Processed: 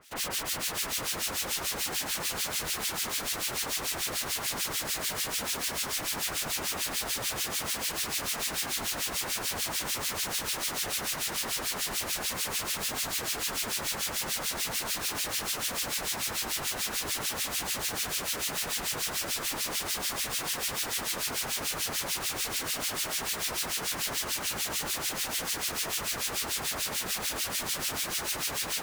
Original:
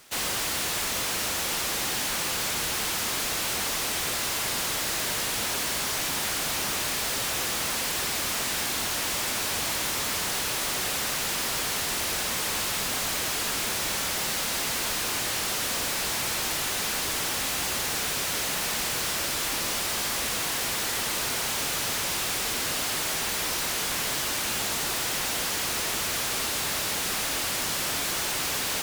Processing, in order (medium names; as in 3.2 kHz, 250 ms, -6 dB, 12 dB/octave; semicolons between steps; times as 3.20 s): harmonic tremolo 6.8 Hz, depth 100%, crossover 1.8 kHz; feedback echo behind a high-pass 138 ms, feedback 76%, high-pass 1.9 kHz, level -10 dB